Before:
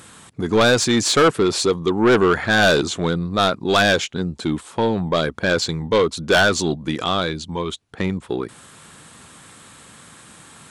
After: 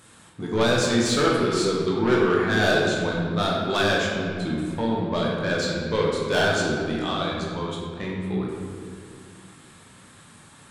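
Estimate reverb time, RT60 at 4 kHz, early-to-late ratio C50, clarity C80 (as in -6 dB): 2.1 s, 1.3 s, 0.0 dB, 2.0 dB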